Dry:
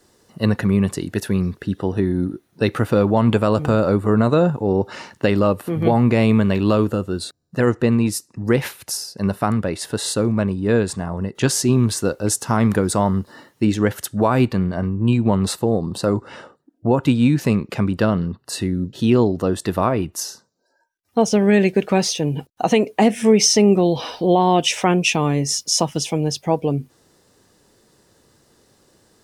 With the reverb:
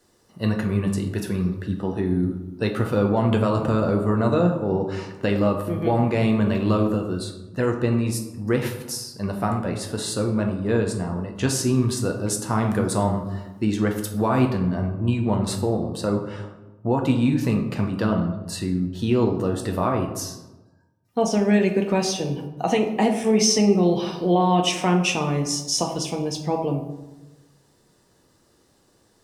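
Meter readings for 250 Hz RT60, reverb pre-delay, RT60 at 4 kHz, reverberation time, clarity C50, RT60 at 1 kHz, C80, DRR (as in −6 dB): 1.3 s, 8 ms, 0.60 s, 1.1 s, 7.5 dB, 1.0 s, 9.5 dB, 2.5 dB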